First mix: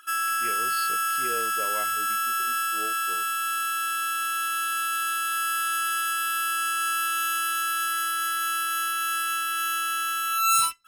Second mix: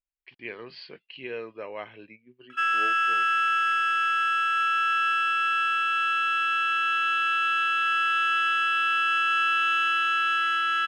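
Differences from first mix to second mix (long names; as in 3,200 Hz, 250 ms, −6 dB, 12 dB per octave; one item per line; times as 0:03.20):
background: entry +2.50 s
master: add low-pass with resonance 2,600 Hz, resonance Q 2.5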